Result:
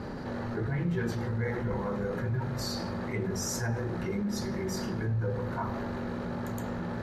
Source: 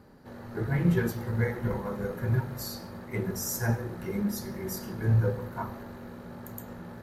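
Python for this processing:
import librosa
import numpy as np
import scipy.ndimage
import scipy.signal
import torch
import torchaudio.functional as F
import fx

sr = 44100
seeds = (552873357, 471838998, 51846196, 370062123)

y = scipy.signal.sosfilt(scipy.signal.butter(2, 5900.0, 'lowpass', fs=sr, output='sos'), x)
y = fx.env_flatten(y, sr, amount_pct=70)
y = y * librosa.db_to_amplitude(-8.0)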